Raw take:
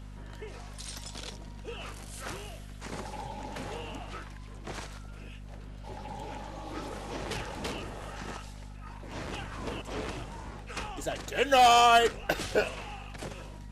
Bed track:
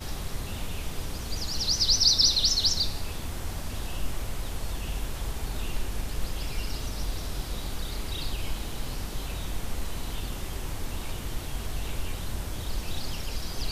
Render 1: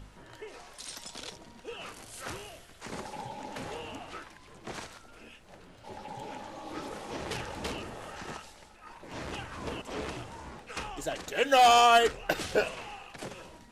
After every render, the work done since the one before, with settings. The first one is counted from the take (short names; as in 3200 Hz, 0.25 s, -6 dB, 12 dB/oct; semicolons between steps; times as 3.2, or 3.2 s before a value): de-hum 50 Hz, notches 5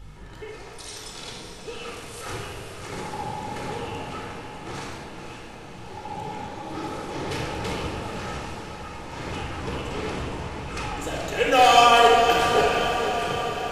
diffused feedback echo 0.519 s, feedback 65%, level -8 dB; shoebox room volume 2700 m³, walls mixed, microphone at 4.1 m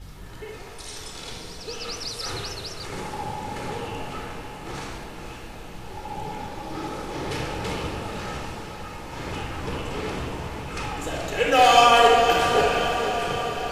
add bed track -13 dB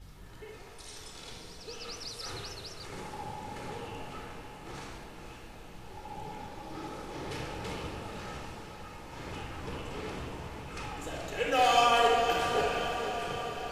gain -9 dB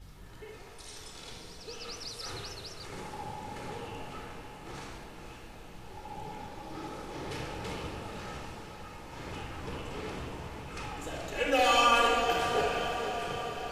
11.35–12.24 comb 3.5 ms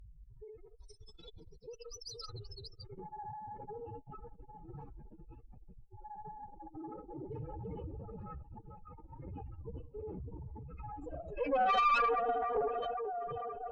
spectral contrast raised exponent 3.9; tube stage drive 21 dB, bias 0.65